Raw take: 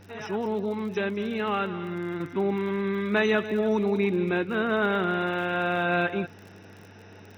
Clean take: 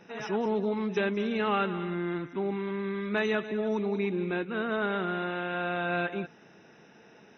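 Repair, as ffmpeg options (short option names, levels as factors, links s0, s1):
-af "adeclick=t=4,bandreject=f=97.7:t=h:w=4,bandreject=f=195.4:t=h:w=4,bandreject=f=293.1:t=h:w=4,bandreject=f=390.8:t=h:w=4,bandreject=f=488.5:t=h:w=4,agate=range=0.0891:threshold=0.01,asetnsamples=n=441:p=0,asendcmd='2.2 volume volume -5dB',volume=1"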